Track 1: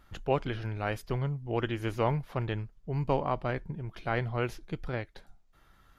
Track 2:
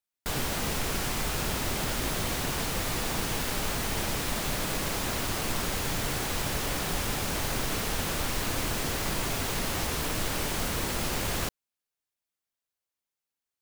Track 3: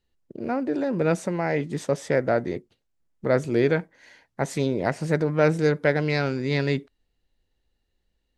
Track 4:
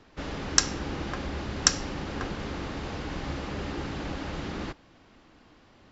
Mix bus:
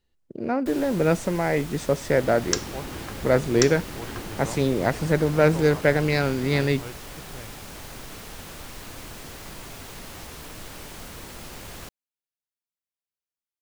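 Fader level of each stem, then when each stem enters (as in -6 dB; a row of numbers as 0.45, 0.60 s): -9.0, -9.5, +1.5, -4.0 dB; 2.45, 0.40, 0.00, 1.95 s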